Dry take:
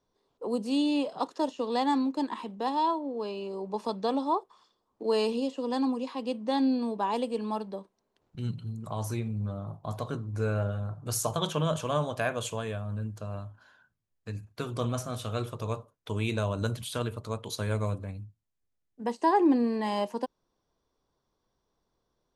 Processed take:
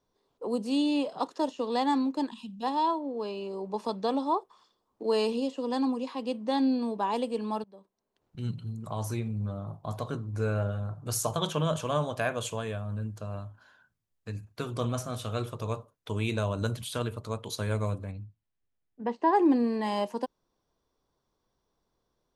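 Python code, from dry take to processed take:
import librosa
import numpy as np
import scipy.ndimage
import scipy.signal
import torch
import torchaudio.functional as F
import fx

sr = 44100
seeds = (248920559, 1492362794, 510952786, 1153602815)

y = fx.spec_box(x, sr, start_s=2.3, length_s=0.33, low_hz=270.0, high_hz=2400.0, gain_db=-21)
y = fx.lowpass(y, sr, hz=fx.line((18.11, 4600.0), (19.32, 2500.0)), slope=12, at=(18.11, 19.32), fade=0.02)
y = fx.edit(y, sr, fx.fade_in_from(start_s=7.64, length_s=0.86, floor_db=-22.0), tone=tone)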